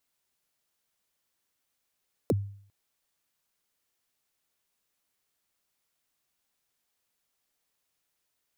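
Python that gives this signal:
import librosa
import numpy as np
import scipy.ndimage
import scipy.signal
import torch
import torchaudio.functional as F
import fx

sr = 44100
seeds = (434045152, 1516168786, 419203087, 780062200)

y = fx.drum_kick(sr, seeds[0], length_s=0.4, level_db=-19, start_hz=590.0, end_hz=100.0, sweep_ms=33.0, decay_s=0.56, click=True)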